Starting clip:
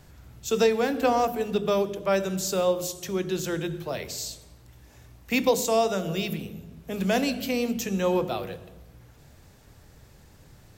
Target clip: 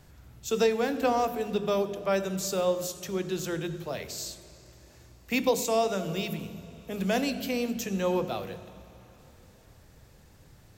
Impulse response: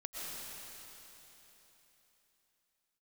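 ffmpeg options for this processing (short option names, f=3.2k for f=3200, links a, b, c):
-filter_complex "[0:a]asplit=2[a][b];[1:a]atrim=start_sample=2205,lowpass=8.8k,adelay=95[c];[b][c]afir=irnorm=-1:irlink=0,volume=-17.5dB[d];[a][d]amix=inputs=2:normalize=0,volume=-3dB"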